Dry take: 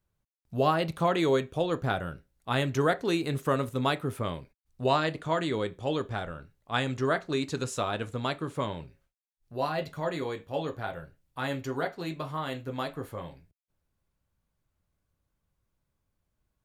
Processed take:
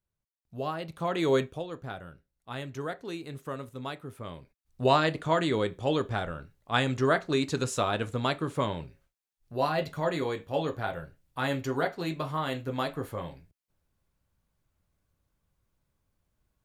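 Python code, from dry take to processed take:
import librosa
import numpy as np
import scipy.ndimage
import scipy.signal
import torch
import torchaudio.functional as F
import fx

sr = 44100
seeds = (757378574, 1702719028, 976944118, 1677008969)

y = fx.gain(x, sr, db=fx.line((0.89, -8.5), (1.43, 2.5), (1.65, -10.0), (4.16, -10.0), (4.82, 2.5)))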